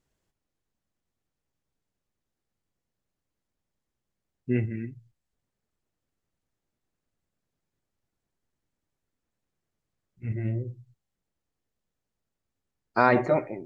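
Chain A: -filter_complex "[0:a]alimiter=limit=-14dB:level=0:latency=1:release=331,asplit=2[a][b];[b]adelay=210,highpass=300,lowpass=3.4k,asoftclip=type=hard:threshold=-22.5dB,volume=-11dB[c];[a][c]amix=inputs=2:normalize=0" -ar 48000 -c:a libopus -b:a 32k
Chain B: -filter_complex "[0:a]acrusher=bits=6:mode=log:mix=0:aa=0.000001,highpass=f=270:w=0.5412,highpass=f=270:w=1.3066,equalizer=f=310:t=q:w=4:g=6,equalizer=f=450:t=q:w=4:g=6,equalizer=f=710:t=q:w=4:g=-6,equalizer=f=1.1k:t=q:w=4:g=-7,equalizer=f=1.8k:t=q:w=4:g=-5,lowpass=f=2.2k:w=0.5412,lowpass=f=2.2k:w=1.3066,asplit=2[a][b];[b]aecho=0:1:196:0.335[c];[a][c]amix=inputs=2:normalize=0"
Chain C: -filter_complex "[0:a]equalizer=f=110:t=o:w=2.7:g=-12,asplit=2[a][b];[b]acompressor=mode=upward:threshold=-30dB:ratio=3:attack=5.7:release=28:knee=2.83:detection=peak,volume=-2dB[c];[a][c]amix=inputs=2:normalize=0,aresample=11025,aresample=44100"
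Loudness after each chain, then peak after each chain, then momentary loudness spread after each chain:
-30.5, -27.5, -25.0 LUFS; -14.0, -8.5, -3.0 dBFS; 13, 20, 21 LU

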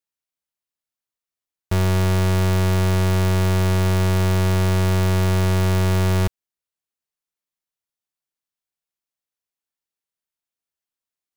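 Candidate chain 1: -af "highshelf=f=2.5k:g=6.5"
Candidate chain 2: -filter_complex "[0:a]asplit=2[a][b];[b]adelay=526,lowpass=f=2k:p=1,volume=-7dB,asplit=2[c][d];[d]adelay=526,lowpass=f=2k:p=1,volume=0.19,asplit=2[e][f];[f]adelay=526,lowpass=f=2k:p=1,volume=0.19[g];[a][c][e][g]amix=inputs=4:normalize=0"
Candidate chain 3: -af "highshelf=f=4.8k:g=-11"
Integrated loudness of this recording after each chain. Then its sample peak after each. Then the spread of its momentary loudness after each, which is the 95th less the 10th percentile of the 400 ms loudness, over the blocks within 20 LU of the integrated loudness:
-19.0, -17.0, -20.0 LUFS; -8.5, -14.0, -17.5 dBFS; 2, 8, 2 LU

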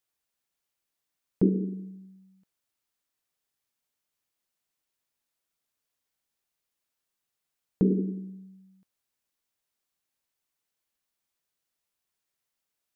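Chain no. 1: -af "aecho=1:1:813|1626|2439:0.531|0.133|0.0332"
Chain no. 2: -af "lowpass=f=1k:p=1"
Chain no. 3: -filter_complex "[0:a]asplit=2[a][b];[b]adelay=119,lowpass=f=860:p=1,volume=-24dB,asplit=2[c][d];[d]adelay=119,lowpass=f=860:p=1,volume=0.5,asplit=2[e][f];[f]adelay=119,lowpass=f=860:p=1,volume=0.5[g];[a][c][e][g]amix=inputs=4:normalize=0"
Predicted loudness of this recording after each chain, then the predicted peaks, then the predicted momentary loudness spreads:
-30.0, -28.5, -28.5 LUFS; -11.0, -11.0, -11.0 dBFS; 20, 18, 17 LU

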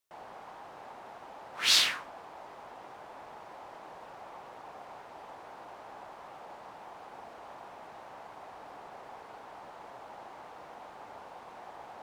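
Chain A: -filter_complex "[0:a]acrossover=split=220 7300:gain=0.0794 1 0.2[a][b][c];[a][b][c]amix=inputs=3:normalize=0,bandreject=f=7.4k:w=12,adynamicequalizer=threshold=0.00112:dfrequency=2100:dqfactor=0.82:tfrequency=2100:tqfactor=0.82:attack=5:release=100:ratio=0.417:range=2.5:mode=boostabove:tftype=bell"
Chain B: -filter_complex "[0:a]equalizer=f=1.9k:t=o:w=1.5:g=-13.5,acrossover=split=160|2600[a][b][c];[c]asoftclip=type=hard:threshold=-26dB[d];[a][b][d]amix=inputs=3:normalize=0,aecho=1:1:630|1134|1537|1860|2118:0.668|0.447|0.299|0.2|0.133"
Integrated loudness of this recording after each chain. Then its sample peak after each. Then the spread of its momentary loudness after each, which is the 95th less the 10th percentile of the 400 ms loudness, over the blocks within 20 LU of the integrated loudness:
-24.0, -40.0 LUFS; -9.0, -21.5 dBFS; 11, 17 LU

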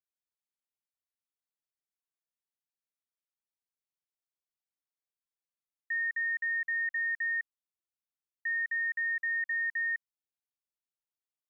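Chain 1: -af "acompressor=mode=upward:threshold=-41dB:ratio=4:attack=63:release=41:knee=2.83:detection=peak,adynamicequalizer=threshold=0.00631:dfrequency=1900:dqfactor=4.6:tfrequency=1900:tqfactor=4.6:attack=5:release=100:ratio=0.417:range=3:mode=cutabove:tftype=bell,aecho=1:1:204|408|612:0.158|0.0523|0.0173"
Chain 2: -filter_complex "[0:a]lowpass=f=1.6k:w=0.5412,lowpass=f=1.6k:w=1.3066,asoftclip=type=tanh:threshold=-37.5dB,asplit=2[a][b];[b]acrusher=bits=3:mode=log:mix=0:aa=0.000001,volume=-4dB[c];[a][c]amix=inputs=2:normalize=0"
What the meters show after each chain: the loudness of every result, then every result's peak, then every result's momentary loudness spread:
-38.0, -36.0 LUFS; -14.0, -34.5 dBFS; 14, 5 LU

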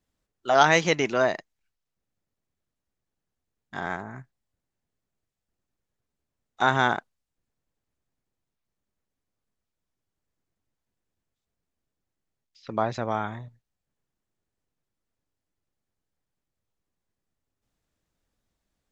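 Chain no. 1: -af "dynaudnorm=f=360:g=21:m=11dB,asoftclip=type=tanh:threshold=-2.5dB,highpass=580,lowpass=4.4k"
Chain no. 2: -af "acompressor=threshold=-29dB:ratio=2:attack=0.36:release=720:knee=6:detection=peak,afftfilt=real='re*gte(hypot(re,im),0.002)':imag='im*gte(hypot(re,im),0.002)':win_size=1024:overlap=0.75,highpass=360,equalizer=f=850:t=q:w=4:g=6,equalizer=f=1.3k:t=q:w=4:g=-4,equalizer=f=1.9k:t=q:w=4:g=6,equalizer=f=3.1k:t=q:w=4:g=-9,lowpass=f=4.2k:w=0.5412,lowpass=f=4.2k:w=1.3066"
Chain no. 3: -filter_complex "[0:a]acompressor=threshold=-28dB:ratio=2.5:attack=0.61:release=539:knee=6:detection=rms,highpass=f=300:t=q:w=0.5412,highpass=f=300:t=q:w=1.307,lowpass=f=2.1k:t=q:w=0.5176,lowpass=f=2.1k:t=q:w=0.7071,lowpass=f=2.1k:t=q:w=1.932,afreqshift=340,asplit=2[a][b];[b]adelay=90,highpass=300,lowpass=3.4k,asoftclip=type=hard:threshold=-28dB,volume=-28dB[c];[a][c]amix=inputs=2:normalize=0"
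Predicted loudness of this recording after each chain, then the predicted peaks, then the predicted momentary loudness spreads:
-24.0, -33.5, -36.0 LUFS; -4.0, -16.0, -18.5 dBFS; 19, 16, 16 LU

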